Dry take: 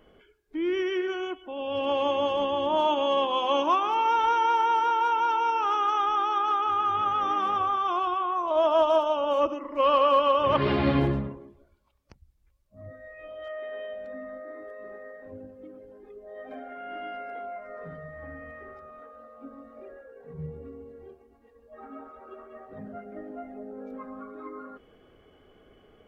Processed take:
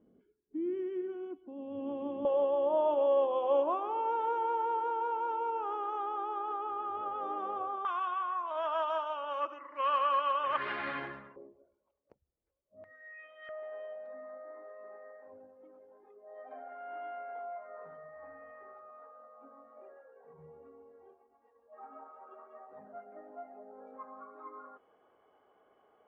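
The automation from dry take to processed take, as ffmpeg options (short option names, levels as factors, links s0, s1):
-af "asetnsamples=n=441:p=0,asendcmd='2.25 bandpass f 530;7.85 bandpass f 1600;11.36 bandpass f 500;12.84 bandpass f 2000;13.49 bandpass f 900',bandpass=f=230:t=q:w=2.3:csg=0"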